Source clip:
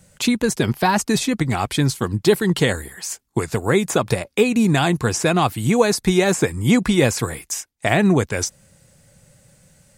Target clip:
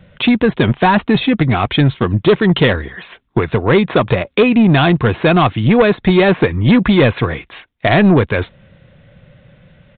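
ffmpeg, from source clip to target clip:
ffmpeg -i in.wav -af "bandreject=frequency=830:width=12,aresample=8000,asoftclip=type=tanh:threshold=-13.5dB,aresample=44100,volume=9dB" out.wav

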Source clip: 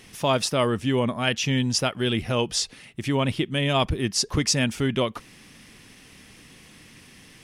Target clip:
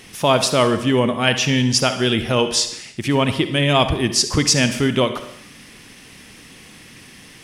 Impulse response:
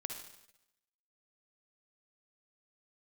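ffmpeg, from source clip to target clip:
-filter_complex "[0:a]asplit=2[link_01][link_02];[1:a]atrim=start_sample=2205,afade=type=out:start_time=0.42:duration=0.01,atrim=end_sample=18963,lowshelf=frequency=110:gain=-10.5[link_03];[link_02][link_03]afir=irnorm=-1:irlink=0,volume=2dB[link_04];[link_01][link_04]amix=inputs=2:normalize=0,volume=1dB"

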